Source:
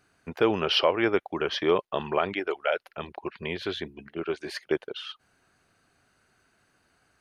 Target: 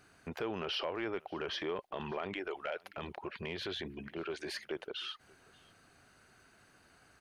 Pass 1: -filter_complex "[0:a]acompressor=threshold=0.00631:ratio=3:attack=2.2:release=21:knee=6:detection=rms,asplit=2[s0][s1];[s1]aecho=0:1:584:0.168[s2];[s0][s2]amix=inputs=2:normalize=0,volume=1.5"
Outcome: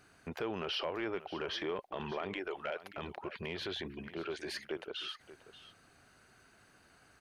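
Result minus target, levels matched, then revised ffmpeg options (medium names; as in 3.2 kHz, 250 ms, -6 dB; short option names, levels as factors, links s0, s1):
echo-to-direct +10 dB
-filter_complex "[0:a]acompressor=threshold=0.00631:ratio=3:attack=2.2:release=21:knee=6:detection=rms,asplit=2[s0][s1];[s1]aecho=0:1:584:0.0531[s2];[s0][s2]amix=inputs=2:normalize=0,volume=1.5"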